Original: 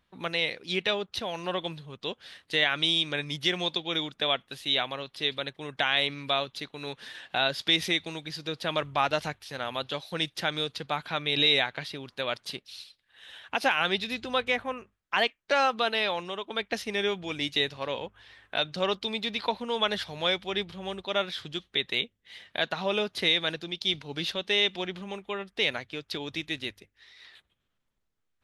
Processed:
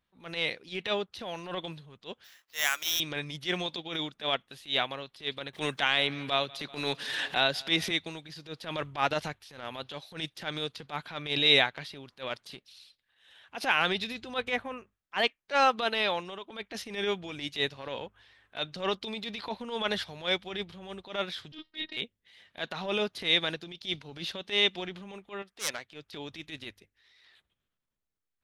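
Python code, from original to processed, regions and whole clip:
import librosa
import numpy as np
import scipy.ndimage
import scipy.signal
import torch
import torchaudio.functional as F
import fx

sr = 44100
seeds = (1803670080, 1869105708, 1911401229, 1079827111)

y = fx.chain(x, sr, fx.highpass(hz=890.0, slope=12),
    fx.high_shelf(hz=4700.0, db=-6.5),
    fx.sample_hold(seeds[0], rate_hz=9200.0, jitter_pct=0), at=(2.24, 3.0))
y = fx.chain(y, sr, fx.echo_feedback(ms=193, feedback_pct=49, wet_db=-24),
    fx.band_squash(depth_pct=100), at=(5.53, 7.91))
y = fx.chain(y, sr, fx.robotise(hz=313.0),
    fx.doubler(ms=33.0, db=-5.5),
    fx.resample_bad(factor=4, down='none', up='filtered'), at=(21.52, 21.97))
y = fx.chain(y, sr, fx.self_delay(depth_ms=0.19),
    fx.low_shelf(hz=250.0, db=-11.5), at=(25.42, 25.92))
y = fx.transient(y, sr, attack_db=-11, sustain_db=3)
y = fx.upward_expand(y, sr, threshold_db=-44.0, expansion=1.5)
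y = y * 10.0 ** (3.0 / 20.0)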